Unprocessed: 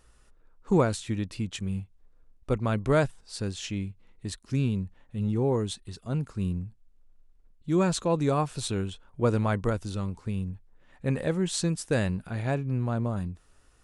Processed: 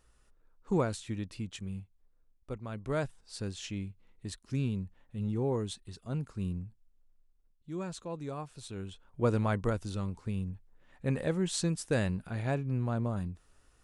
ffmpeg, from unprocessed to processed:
ffmpeg -i in.wav -af "volume=12.5dB,afade=type=out:start_time=1.33:duration=1.35:silence=0.421697,afade=type=in:start_time=2.68:duration=0.67:silence=0.375837,afade=type=out:start_time=6.61:duration=1.1:silence=0.375837,afade=type=in:start_time=8.68:duration=0.55:silence=0.298538" out.wav

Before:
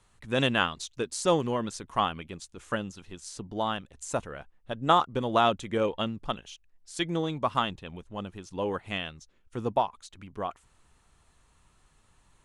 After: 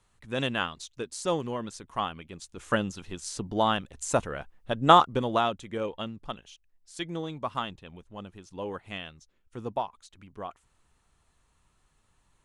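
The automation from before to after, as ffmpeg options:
ffmpeg -i in.wav -af "volume=5dB,afade=type=in:start_time=2.29:duration=0.48:silence=0.354813,afade=type=out:start_time=4.96:duration=0.53:silence=0.316228" out.wav

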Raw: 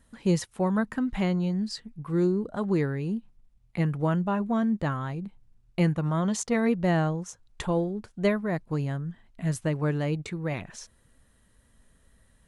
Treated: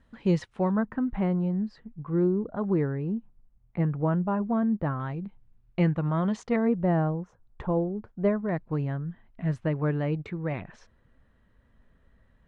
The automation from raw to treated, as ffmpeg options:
ffmpeg -i in.wav -af "asetnsamples=nb_out_samples=441:pad=0,asendcmd='0.71 lowpass f 1400;5 lowpass f 2600;6.56 lowpass f 1200;8.49 lowpass f 2200',lowpass=3200" out.wav

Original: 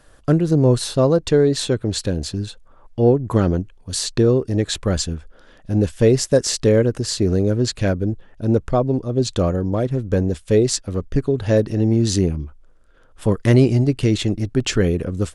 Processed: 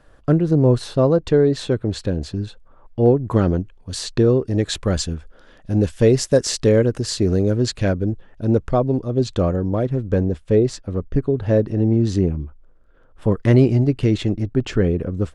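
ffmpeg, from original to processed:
ffmpeg -i in.wav -af "asetnsamples=nb_out_samples=441:pad=0,asendcmd='3.06 lowpass f 3700;4.55 lowpass f 8100;7.76 lowpass f 4900;9.24 lowpass f 2600;10.24 lowpass f 1300;13.32 lowpass f 2300;14.43 lowpass f 1300',lowpass=frequency=2100:poles=1" out.wav

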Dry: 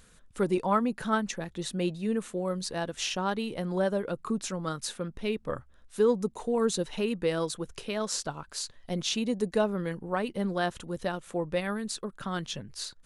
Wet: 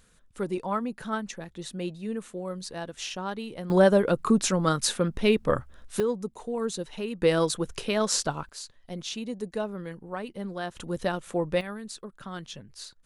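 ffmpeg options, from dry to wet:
ffmpeg -i in.wav -af "asetnsamples=nb_out_samples=441:pad=0,asendcmd='3.7 volume volume 9dB;6 volume volume -3.5dB;7.22 volume volume 6dB;8.49 volume volume -5dB;10.77 volume volume 3.5dB;11.61 volume volume -5dB',volume=-3.5dB" out.wav

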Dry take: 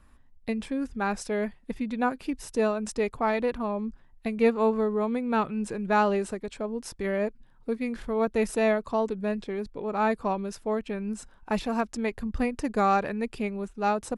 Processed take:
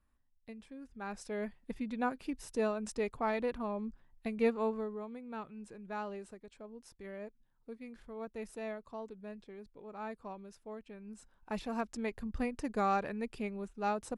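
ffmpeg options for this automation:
ffmpeg -i in.wav -af "volume=2dB,afade=type=in:start_time=0.85:duration=0.75:silence=0.266073,afade=type=out:start_time=4.43:duration=0.65:silence=0.316228,afade=type=in:start_time=11.02:duration=0.87:silence=0.334965" out.wav

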